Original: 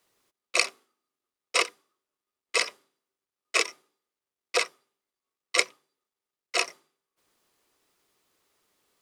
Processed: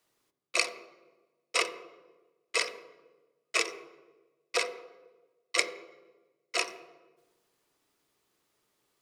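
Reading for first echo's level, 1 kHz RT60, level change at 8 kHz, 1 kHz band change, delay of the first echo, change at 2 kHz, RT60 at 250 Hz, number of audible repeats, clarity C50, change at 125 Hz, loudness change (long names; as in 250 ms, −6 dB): no echo audible, 1.1 s, −4.0 dB, −3.5 dB, no echo audible, −3.5 dB, 1.6 s, no echo audible, 12.0 dB, can't be measured, −3.5 dB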